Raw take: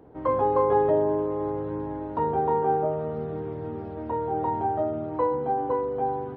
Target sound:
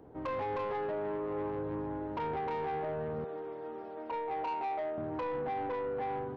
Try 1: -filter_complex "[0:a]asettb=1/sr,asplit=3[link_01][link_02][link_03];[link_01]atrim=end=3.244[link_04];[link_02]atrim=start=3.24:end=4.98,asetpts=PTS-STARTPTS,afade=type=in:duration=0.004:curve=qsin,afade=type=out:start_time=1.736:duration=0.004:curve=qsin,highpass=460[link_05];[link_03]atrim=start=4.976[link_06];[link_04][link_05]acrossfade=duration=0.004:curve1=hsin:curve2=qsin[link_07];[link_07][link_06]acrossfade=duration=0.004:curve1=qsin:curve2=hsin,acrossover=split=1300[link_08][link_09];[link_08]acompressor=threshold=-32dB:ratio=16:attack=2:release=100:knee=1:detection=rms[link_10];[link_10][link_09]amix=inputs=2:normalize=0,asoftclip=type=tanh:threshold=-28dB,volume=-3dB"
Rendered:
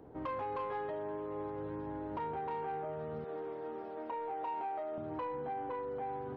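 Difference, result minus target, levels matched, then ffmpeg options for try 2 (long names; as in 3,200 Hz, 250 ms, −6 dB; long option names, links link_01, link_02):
downward compressor: peak gain reduction +7.5 dB
-filter_complex "[0:a]asettb=1/sr,asplit=3[link_01][link_02][link_03];[link_01]atrim=end=3.244[link_04];[link_02]atrim=start=3.24:end=4.98,asetpts=PTS-STARTPTS,afade=type=in:duration=0.004:curve=qsin,afade=type=out:start_time=1.736:duration=0.004:curve=qsin,highpass=460[link_05];[link_03]atrim=start=4.976[link_06];[link_04][link_05]acrossfade=duration=0.004:curve1=hsin:curve2=qsin[link_07];[link_07][link_06]acrossfade=duration=0.004:curve1=qsin:curve2=hsin,acrossover=split=1300[link_08][link_09];[link_08]acompressor=threshold=-24dB:ratio=16:attack=2:release=100:knee=1:detection=rms[link_10];[link_10][link_09]amix=inputs=2:normalize=0,asoftclip=type=tanh:threshold=-28dB,volume=-3dB"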